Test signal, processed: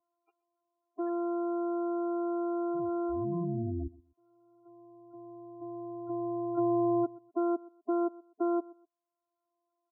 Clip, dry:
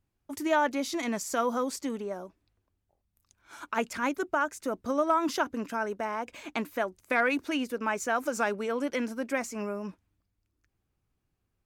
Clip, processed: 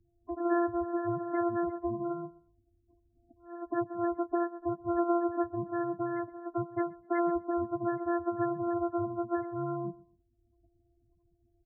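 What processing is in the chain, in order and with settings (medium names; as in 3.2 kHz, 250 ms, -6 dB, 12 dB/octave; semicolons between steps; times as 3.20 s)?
sorted samples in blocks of 128 samples; loudest bins only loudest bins 8; on a send: feedback delay 125 ms, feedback 21%, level -22.5 dB; on the sum: three bands compressed up and down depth 40%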